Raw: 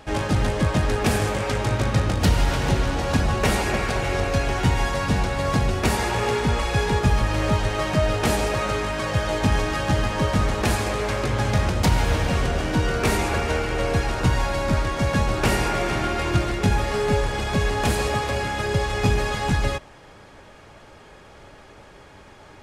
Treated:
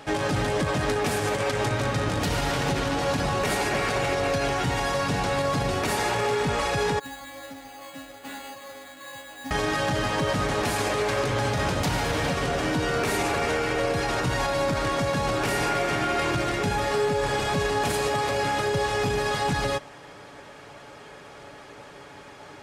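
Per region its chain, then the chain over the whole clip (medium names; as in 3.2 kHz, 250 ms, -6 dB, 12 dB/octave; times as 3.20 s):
6.99–9.51 s: inharmonic resonator 270 Hz, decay 0.55 s, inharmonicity 0.002 + careless resampling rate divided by 8×, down none, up hold
whole clip: high-pass 180 Hz 6 dB/octave; comb 7 ms, depth 36%; peak limiter -19 dBFS; trim +2.5 dB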